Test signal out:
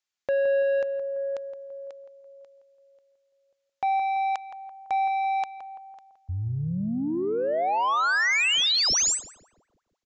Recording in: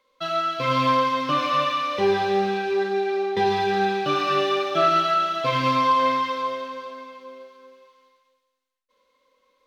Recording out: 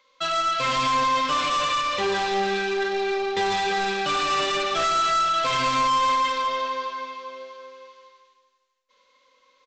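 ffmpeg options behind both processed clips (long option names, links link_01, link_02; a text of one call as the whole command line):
ffmpeg -i in.wav -filter_complex "[0:a]tiltshelf=frequency=770:gain=-6,aresample=16000,asoftclip=type=tanh:threshold=-24dB,aresample=44100,asplit=2[link_01][link_02];[link_02]adelay=168,lowpass=frequency=1500:poles=1,volume=-9dB,asplit=2[link_03][link_04];[link_04]adelay=168,lowpass=frequency=1500:poles=1,volume=0.52,asplit=2[link_05][link_06];[link_06]adelay=168,lowpass=frequency=1500:poles=1,volume=0.52,asplit=2[link_07][link_08];[link_08]adelay=168,lowpass=frequency=1500:poles=1,volume=0.52,asplit=2[link_09][link_10];[link_10]adelay=168,lowpass=frequency=1500:poles=1,volume=0.52,asplit=2[link_11][link_12];[link_12]adelay=168,lowpass=frequency=1500:poles=1,volume=0.52[link_13];[link_01][link_03][link_05][link_07][link_09][link_11][link_13]amix=inputs=7:normalize=0,volume=3dB" out.wav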